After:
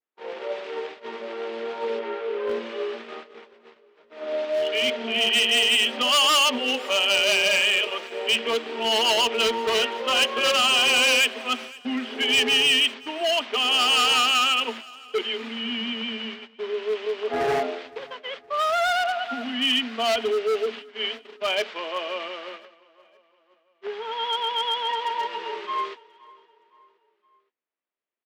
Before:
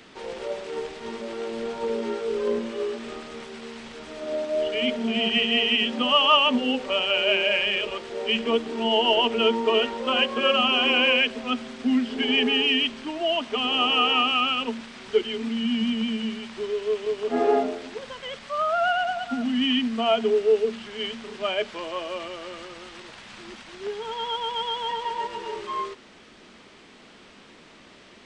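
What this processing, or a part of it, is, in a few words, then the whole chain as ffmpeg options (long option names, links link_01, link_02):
walkie-talkie: -filter_complex "[0:a]highpass=410,lowpass=2800,asoftclip=type=hard:threshold=-22dB,agate=range=-44dB:threshold=-39dB:ratio=16:detection=peak,highpass=51,asplit=3[link_01][link_02][link_03];[link_01]afade=type=out:start_time=1.98:duration=0.02[link_04];[link_02]bass=frequency=250:gain=-8,treble=frequency=4000:gain=-13,afade=type=in:start_time=1.98:duration=0.02,afade=type=out:start_time=2.48:duration=0.02[link_05];[link_03]afade=type=in:start_time=2.48:duration=0.02[link_06];[link_04][link_05][link_06]amix=inputs=3:normalize=0,aecho=1:1:517|1034|1551:0.0708|0.0347|0.017,adynamicequalizer=threshold=0.00794:dfrequency=2100:dqfactor=0.7:tfrequency=2100:tqfactor=0.7:attack=5:release=100:ratio=0.375:range=4:mode=boostabove:tftype=highshelf,volume=2dB"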